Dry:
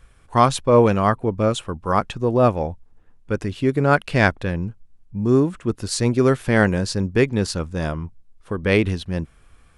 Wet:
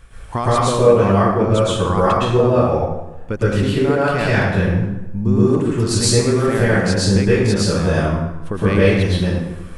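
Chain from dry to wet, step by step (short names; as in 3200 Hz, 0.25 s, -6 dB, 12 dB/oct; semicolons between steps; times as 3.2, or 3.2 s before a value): compressor 6:1, threshold -26 dBFS, peak gain reduction 16 dB; plate-style reverb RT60 0.98 s, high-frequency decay 0.7×, pre-delay 0.1 s, DRR -8.5 dB; gain +5.5 dB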